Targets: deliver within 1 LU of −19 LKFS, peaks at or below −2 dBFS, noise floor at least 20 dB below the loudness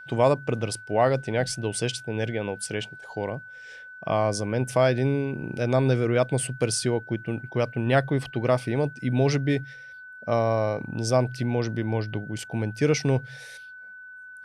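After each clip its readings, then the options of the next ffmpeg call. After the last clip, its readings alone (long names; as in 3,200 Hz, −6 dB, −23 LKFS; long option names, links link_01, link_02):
interfering tone 1,500 Hz; level of the tone −41 dBFS; integrated loudness −26.0 LKFS; sample peak −8.0 dBFS; target loudness −19.0 LKFS
→ -af "bandreject=frequency=1500:width=30"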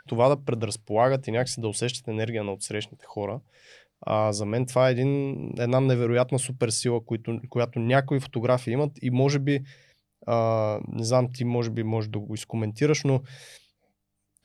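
interfering tone none found; integrated loudness −26.0 LKFS; sample peak −8.0 dBFS; target loudness −19.0 LKFS
→ -af "volume=7dB,alimiter=limit=-2dB:level=0:latency=1"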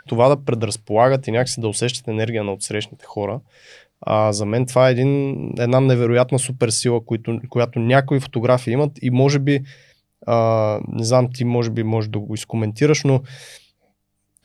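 integrated loudness −19.0 LKFS; sample peak −2.0 dBFS; background noise floor −70 dBFS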